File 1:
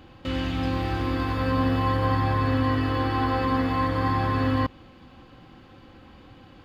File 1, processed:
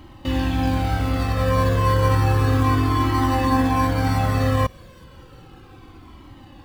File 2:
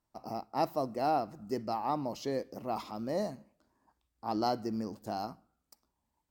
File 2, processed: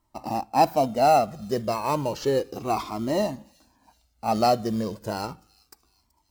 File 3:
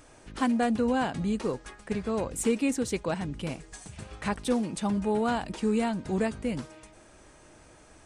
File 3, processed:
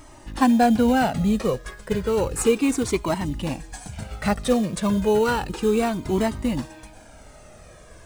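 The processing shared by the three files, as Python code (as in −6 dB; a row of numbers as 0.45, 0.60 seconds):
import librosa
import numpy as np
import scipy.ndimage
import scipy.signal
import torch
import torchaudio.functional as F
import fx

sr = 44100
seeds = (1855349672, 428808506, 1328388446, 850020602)

p1 = fx.sample_hold(x, sr, seeds[0], rate_hz=3400.0, jitter_pct=0)
p2 = x + F.gain(torch.from_numpy(p1), -9.5).numpy()
p3 = fx.echo_wet_highpass(p2, sr, ms=378, feedback_pct=51, hz=4000.0, wet_db=-20)
p4 = fx.quant_float(p3, sr, bits=4)
p5 = fx.comb_cascade(p4, sr, direction='falling', hz=0.32)
y = librosa.util.normalize(p5) * 10.0 ** (-6 / 20.0)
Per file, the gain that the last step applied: +7.0, +12.5, +10.0 decibels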